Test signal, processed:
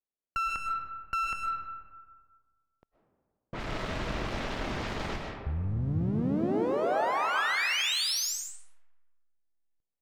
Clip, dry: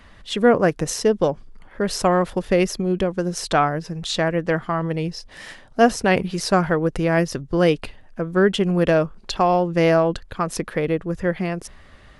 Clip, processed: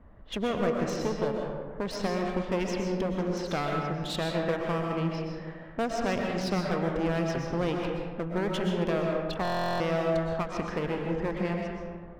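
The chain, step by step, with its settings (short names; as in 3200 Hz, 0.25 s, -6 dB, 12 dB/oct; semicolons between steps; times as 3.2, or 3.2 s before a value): compressor 2.5:1, threshold -24 dBFS; LPF 8000 Hz 24 dB/oct; low-pass opened by the level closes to 650 Hz, open at -20 dBFS; one-sided clip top -34 dBFS; digital reverb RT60 1.7 s, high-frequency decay 0.45×, pre-delay 85 ms, DRR 0.5 dB; stuck buffer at 9.43, samples 1024, times 15; gain -3.5 dB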